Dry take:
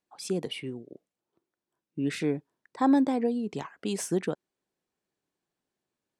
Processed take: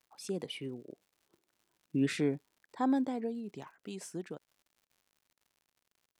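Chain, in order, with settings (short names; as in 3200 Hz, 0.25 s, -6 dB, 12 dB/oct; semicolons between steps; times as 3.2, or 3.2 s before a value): Doppler pass-by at 1.53, 10 m/s, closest 3.8 m; crackle 120/s -60 dBFS; gain +4 dB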